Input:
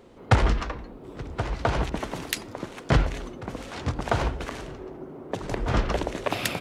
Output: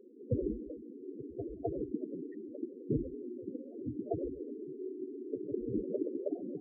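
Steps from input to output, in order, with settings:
resonant band-pass 340 Hz, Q 1.7
spectral peaks only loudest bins 8

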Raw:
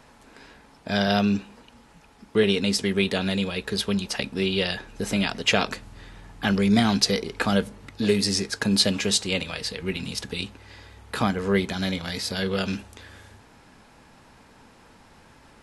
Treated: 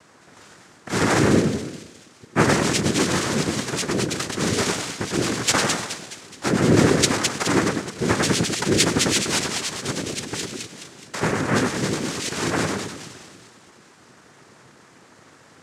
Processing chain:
echo with a time of its own for lows and highs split 2,900 Hz, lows 99 ms, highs 211 ms, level −3.5 dB
cochlear-implant simulation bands 3
level +1 dB

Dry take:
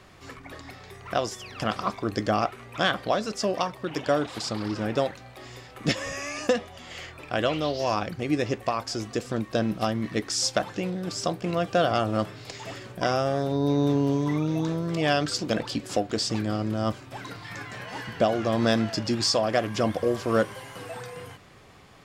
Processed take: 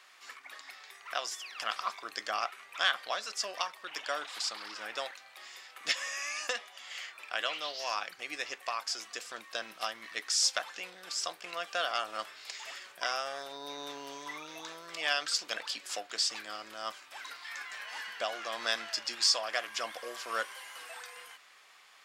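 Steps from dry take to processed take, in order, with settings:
high-pass filter 1,300 Hz 12 dB per octave
level −1 dB

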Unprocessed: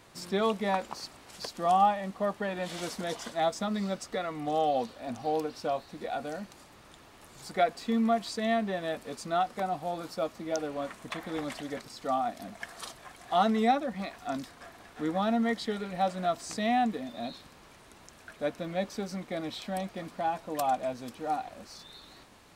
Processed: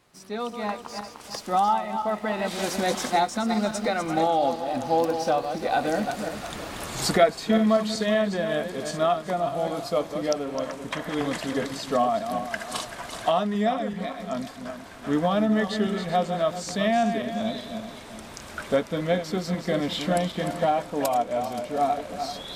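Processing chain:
feedback delay that plays each chunk backwards 181 ms, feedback 51%, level −8 dB
source passing by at 0:06.57, 24 m/s, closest 29 metres
camcorder AGC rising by 6.4 dB per second
level +8.5 dB

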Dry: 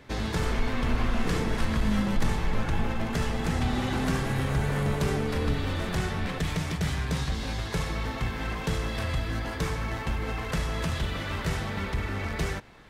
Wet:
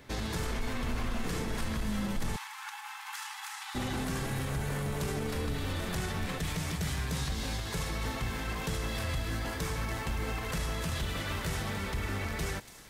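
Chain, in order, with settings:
high-shelf EQ 7,000 Hz +11 dB
brickwall limiter −22.5 dBFS, peak gain reduction 7 dB
0:02.36–0:03.75: linear-phase brick-wall high-pass 780 Hz
delay with a high-pass on its return 286 ms, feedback 76%, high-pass 5,100 Hz, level −10 dB
level −2.5 dB

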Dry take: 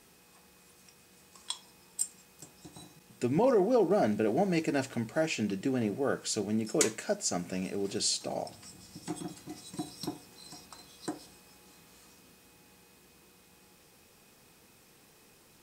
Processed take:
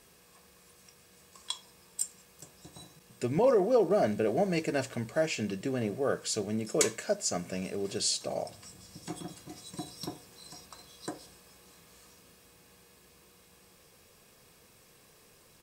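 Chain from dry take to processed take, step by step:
comb filter 1.8 ms, depth 37%

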